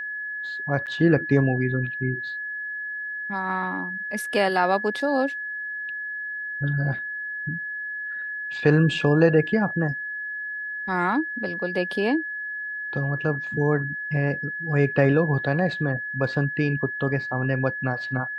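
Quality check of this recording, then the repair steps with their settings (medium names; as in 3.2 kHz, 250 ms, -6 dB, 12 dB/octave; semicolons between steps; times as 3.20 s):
whine 1.7 kHz -29 dBFS
0.86–0.87 s: dropout 8.1 ms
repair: band-stop 1.7 kHz, Q 30; interpolate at 0.86 s, 8.1 ms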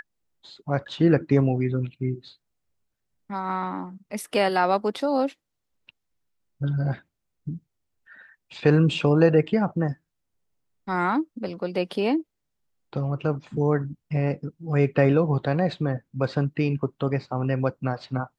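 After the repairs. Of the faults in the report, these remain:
nothing left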